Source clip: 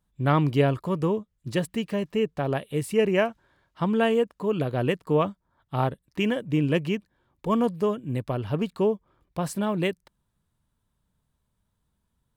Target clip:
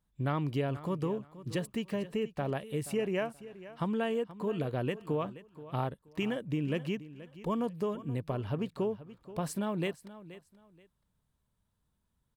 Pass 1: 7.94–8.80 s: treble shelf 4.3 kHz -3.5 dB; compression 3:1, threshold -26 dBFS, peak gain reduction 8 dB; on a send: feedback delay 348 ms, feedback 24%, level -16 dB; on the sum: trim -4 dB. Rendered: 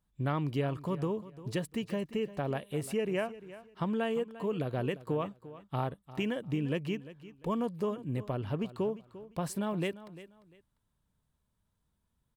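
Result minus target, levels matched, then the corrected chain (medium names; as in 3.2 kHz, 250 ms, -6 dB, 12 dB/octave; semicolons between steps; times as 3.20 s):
echo 130 ms early
7.94–8.80 s: treble shelf 4.3 kHz -3.5 dB; compression 3:1, threshold -26 dBFS, peak gain reduction 8 dB; on a send: feedback delay 478 ms, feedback 24%, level -16 dB; on the sum: trim -4 dB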